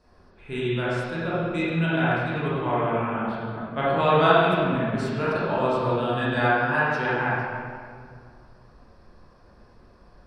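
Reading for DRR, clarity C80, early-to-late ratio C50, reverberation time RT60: −9.5 dB, −1.5 dB, −4.5 dB, 2.1 s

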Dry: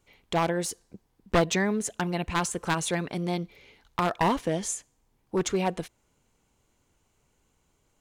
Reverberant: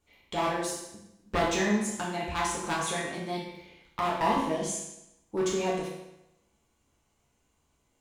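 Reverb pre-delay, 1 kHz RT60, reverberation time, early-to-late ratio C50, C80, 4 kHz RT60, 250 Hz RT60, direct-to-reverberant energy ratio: 6 ms, 0.85 s, 0.85 s, 2.0 dB, 5.5 dB, 0.80 s, 0.85 s, −5.0 dB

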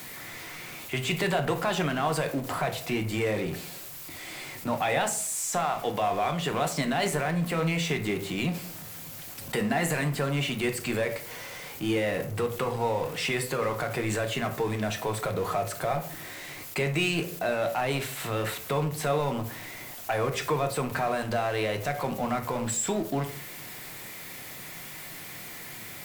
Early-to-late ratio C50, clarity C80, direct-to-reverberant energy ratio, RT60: 11.5 dB, 15.5 dB, 5.0 dB, 0.50 s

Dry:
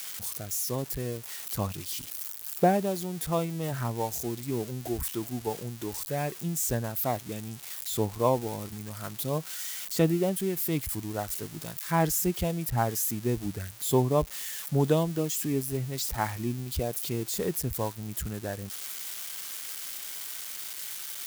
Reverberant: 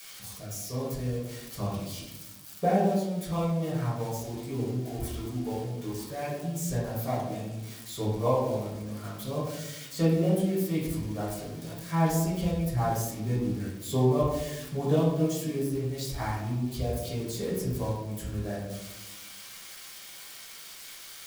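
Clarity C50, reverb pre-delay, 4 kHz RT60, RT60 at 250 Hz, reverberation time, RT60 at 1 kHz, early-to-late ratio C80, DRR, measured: 1.5 dB, 4 ms, 0.55 s, 1.8 s, 1.1 s, 0.85 s, 5.0 dB, −8.0 dB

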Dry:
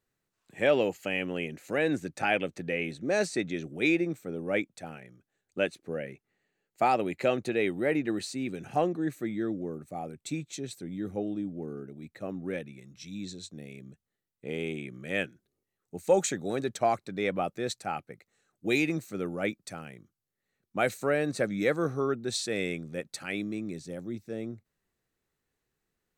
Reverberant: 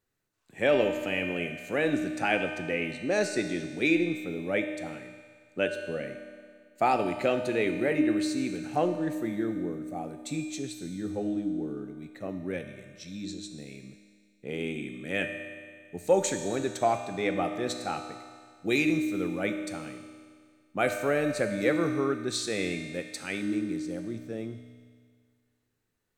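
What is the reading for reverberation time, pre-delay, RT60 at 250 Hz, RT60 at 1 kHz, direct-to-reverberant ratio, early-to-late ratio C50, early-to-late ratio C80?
1.9 s, 3 ms, 1.9 s, 1.9 s, 5.0 dB, 6.5 dB, 7.5 dB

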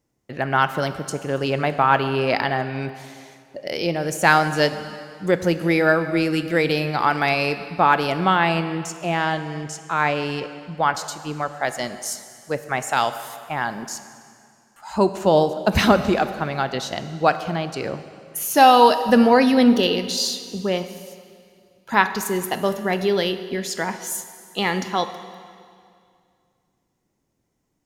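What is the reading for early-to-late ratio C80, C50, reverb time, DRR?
12.5 dB, 11.5 dB, 2.3 s, 10.5 dB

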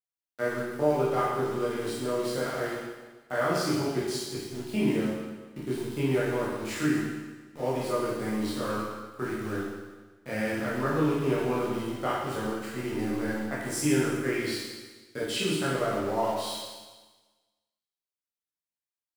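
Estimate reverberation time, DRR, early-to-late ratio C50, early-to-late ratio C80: 1.3 s, −7.5 dB, −0.5 dB, 2.0 dB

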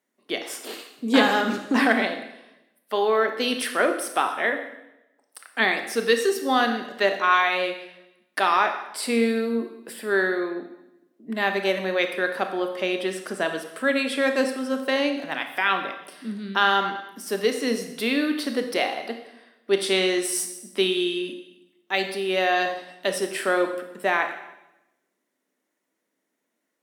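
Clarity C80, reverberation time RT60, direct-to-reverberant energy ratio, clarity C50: 10.5 dB, 0.90 s, 6.0 dB, 8.0 dB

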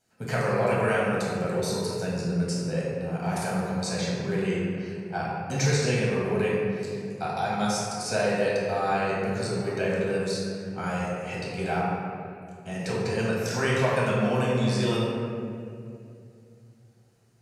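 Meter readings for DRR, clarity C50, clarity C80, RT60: −6.5 dB, −2.0 dB, 0.0 dB, 2.5 s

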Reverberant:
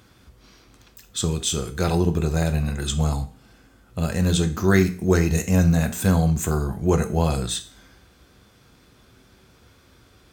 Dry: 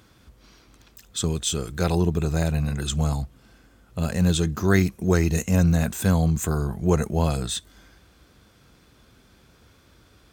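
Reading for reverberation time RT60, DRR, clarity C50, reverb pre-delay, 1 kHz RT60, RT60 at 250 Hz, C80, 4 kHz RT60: 0.40 s, 7.0 dB, 14.5 dB, 8 ms, 0.40 s, 0.40 s, 19.0 dB, 0.40 s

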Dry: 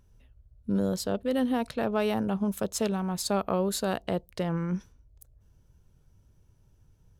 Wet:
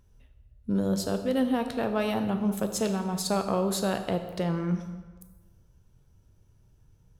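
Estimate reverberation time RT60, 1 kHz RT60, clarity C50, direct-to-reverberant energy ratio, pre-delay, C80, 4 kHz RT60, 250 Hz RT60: 1.4 s, 1.4 s, 9.0 dB, 6.5 dB, 9 ms, 10.5 dB, 1.0 s, 1.4 s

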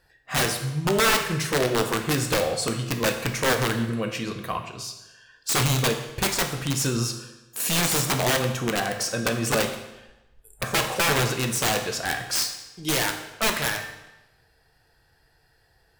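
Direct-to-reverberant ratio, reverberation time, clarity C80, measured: 4.5 dB, 1.0 s, 9.5 dB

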